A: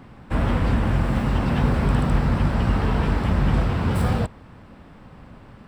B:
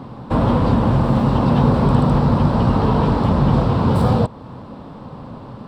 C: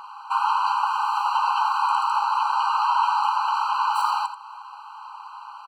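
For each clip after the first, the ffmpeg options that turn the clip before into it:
-filter_complex "[0:a]equalizer=f=125:t=o:w=1:g=10,equalizer=f=250:t=o:w=1:g=8,equalizer=f=500:t=o:w=1:g=9,equalizer=f=1k:t=o:w=1:g=12,equalizer=f=2k:t=o:w=1:g=-6,equalizer=f=4k:t=o:w=1:g=10,asplit=2[a][b];[b]acompressor=threshold=-20dB:ratio=6,volume=0dB[c];[a][c]amix=inputs=2:normalize=0,volume=-6dB"
-af "aecho=1:1:85:0.299,afftfilt=real='re*eq(mod(floor(b*sr/1024/790),2),1)':imag='im*eq(mod(floor(b*sr/1024/790),2),1)':win_size=1024:overlap=0.75,volume=4.5dB"

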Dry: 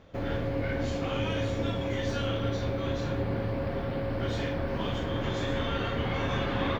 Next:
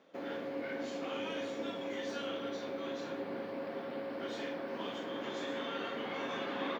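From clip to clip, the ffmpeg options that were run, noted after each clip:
-af "highpass=f=230:w=0.5412,highpass=f=230:w=1.3066,volume=-6.5dB"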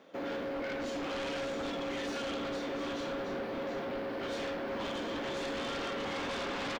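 -af "aecho=1:1:718:0.376,aeval=exprs='0.0531*sin(PI/2*3.16*val(0)/0.0531)':c=same,volume=-7.5dB"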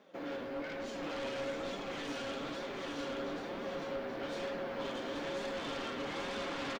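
-af "flanger=delay=4.7:depth=3.5:regen=50:speed=1.1:shape=triangular,aecho=1:1:831:0.596"

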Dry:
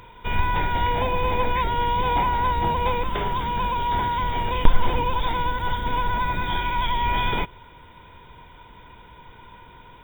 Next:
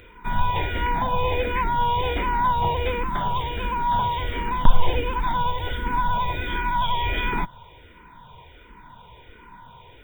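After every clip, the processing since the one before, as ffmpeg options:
-filter_complex "[0:a]asplit=2[a][b];[b]afreqshift=-1.4[c];[a][c]amix=inputs=2:normalize=1,volume=2.5dB"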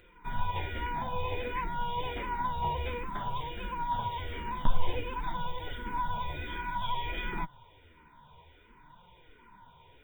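-af "flanger=delay=5.5:depth=8.2:regen=34:speed=0.55:shape=sinusoidal,volume=-6.5dB"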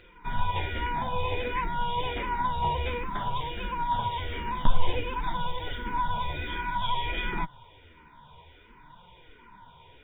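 -af "highshelf=f=6.3k:t=q:w=1.5:g=-11.5,volume=4dB"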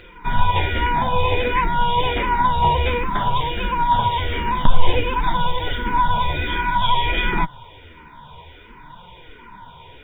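-af "alimiter=level_in=11.5dB:limit=-1dB:release=50:level=0:latency=1,volume=-1dB"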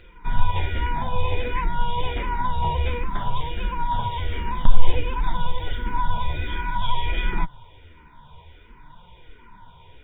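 -af "lowshelf=f=100:g=10.5,volume=-9dB"

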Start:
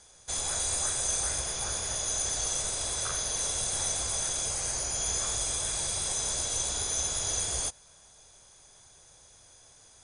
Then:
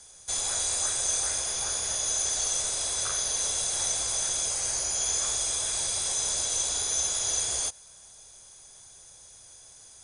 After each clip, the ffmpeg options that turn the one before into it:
-filter_complex "[0:a]aemphasis=mode=production:type=cd,acrossover=split=6800[a][b];[b]acompressor=threshold=-33dB:ratio=4:attack=1:release=60[c];[a][c]amix=inputs=2:normalize=0,acrossover=split=310|1200[d][e][f];[d]alimiter=level_in=17.5dB:limit=-24dB:level=0:latency=1:release=355,volume=-17.5dB[g];[g][e][f]amix=inputs=3:normalize=0"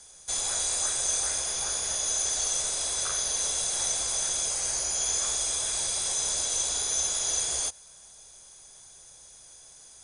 -af "equalizer=f=95:w=6.3:g=-13"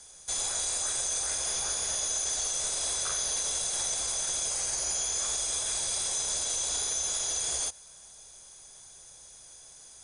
-af "alimiter=limit=-21.5dB:level=0:latency=1:release=28"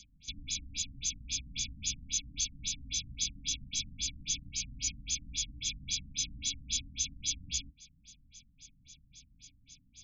-af "highshelf=f=9.8k:g=-11,afftfilt=real='re*(1-between(b*sr/4096,300,2200))':imag='im*(1-between(b*sr/4096,300,2200))':win_size=4096:overlap=0.75,afftfilt=real='re*lt(b*sr/1024,370*pow(7700/370,0.5+0.5*sin(2*PI*3.7*pts/sr)))':imag='im*lt(b*sr/1024,370*pow(7700/370,0.5+0.5*sin(2*PI*3.7*pts/sr)))':win_size=1024:overlap=0.75,volume=4.5dB"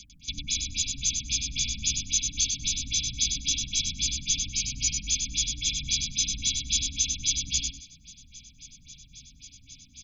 -af "aecho=1:1:98|196|294:0.562|0.09|0.0144,volume=7.5dB"

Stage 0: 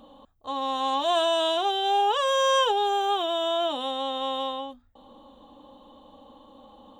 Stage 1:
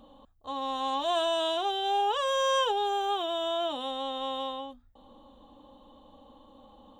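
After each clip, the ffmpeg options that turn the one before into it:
-af "lowshelf=f=99:g=8,volume=-4.5dB"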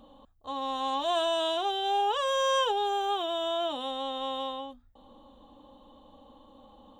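-af anull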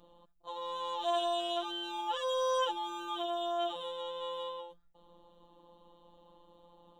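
-af "afftfilt=real='hypot(re,im)*cos(PI*b)':imag='0':win_size=1024:overlap=0.75,volume=-2dB"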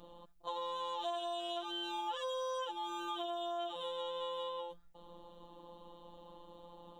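-af "acompressor=threshold=-42dB:ratio=6,volume=5.5dB"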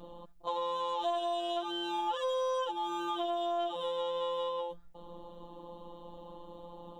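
-af "tiltshelf=f=1.3k:g=3.5,aeval=exprs='0.0531*(cos(1*acos(clip(val(0)/0.0531,-1,1)))-cos(1*PI/2))+0.000596*(cos(8*acos(clip(val(0)/0.0531,-1,1)))-cos(8*PI/2))':c=same,volume=4.5dB"

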